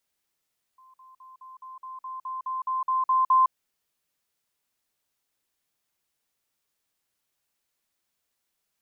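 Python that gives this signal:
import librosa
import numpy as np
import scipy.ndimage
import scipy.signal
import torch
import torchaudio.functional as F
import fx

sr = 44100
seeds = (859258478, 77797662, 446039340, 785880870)

y = fx.level_ladder(sr, hz=1040.0, from_db=-51.5, step_db=3.0, steps=13, dwell_s=0.16, gap_s=0.05)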